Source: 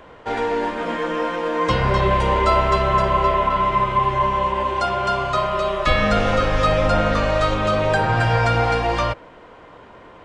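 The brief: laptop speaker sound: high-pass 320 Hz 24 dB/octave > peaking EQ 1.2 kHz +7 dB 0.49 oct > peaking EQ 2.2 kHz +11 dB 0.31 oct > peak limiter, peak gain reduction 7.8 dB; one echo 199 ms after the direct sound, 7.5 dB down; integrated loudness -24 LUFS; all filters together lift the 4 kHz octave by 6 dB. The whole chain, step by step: high-pass 320 Hz 24 dB/octave; peaking EQ 1.2 kHz +7 dB 0.49 oct; peaking EQ 2.2 kHz +11 dB 0.31 oct; peaking EQ 4 kHz +6.5 dB; delay 199 ms -7.5 dB; trim -6.5 dB; peak limiter -15.5 dBFS

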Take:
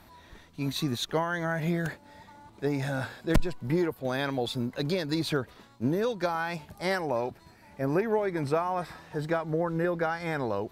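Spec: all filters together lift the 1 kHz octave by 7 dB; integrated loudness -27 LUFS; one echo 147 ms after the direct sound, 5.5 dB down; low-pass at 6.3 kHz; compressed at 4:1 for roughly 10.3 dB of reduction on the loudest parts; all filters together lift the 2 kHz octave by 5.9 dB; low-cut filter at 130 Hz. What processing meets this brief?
high-pass 130 Hz; low-pass 6.3 kHz; peaking EQ 1 kHz +8 dB; peaking EQ 2 kHz +4.5 dB; compression 4:1, threshold -29 dBFS; delay 147 ms -5.5 dB; trim +5.5 dB

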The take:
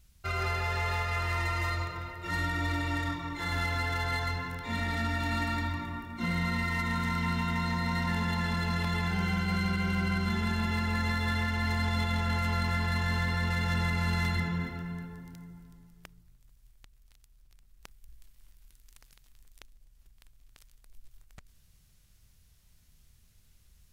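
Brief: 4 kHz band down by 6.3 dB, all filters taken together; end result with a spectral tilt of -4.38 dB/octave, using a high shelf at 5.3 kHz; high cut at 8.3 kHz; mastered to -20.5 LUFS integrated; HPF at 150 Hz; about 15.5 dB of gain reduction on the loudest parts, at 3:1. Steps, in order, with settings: high-pass 150 Hz; low-pass 8.3 kHz; peaking EQ 4 kHz -9 dB; treble shelf 5.3 kHz +4 dB; compression 3:1, threshold -51 dBFS; trim +27.5 dB

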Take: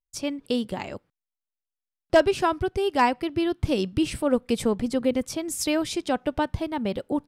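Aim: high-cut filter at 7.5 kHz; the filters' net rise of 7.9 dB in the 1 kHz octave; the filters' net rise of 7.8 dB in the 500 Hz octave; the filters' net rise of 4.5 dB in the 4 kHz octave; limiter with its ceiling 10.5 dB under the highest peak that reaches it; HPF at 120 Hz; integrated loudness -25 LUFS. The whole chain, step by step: high-pass 120 Hz; low-pass 7.5 kHz; peaking EQ 500 Hz +8 dB; peaking EQ 1 kHz +6.5 dB; peaking EQ 4 kHz +6 dB; trim -2.5 dB; peak limiter -13.5 dBFS

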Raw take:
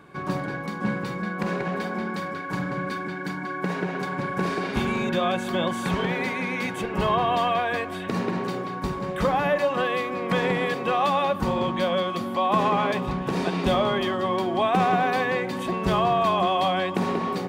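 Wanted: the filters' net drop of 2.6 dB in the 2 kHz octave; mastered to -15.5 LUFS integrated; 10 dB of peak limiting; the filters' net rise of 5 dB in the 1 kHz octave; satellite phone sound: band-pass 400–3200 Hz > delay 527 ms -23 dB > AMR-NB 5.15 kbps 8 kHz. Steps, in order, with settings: peaking EQ 1 kHz +8 dB; peaking EQ 2 kHz -6 dB; peak limiter -16 dBFS; band-pass 400–3200 Hz; delay 527 ms -23 dB; trim +12.5 dB; AMR-NB 5.15 kbps 8 kHz

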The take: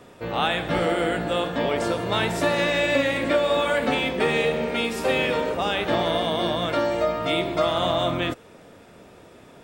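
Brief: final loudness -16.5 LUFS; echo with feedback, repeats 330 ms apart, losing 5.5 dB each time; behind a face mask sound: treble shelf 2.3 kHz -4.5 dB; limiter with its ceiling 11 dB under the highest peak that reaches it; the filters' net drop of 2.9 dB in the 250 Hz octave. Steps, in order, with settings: peaking EQ 250 Hz -4 dB; peak limiter -20.5 dBFS; treble shelf 2.3 kHz -4.5 dB; feedback delay 330 ms, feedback 53%, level -5.5 dB; trim +12.5 dB

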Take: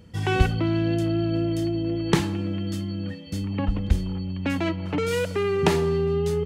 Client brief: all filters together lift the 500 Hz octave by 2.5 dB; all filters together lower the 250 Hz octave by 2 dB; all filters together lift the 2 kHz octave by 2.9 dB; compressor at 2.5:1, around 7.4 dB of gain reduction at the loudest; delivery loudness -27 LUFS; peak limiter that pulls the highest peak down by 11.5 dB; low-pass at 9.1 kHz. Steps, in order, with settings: low-pass 9.1 kHz; peaking EQ 250 Hz -7 dB; peaking EQ 500 Hz +6.5 dB; peaking EQ 2 kHz +3.5 dB; compression 2.5:1, threshold -25 dBFS; trim +3 dB; peak limiter -18 dBFS

